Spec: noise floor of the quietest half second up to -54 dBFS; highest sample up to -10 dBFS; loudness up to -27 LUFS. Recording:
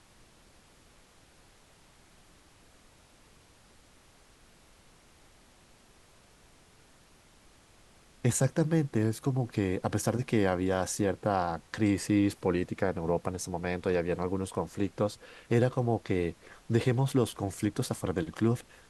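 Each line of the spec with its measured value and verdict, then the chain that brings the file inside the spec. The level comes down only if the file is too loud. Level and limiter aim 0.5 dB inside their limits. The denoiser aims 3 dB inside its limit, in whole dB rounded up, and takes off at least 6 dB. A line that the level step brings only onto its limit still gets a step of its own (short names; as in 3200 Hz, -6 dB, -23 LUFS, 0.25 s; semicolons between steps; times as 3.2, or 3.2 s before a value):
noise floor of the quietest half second -60 dBFS: OK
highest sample -12.0 dBFS: OK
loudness -30.5 LUFS: OK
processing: none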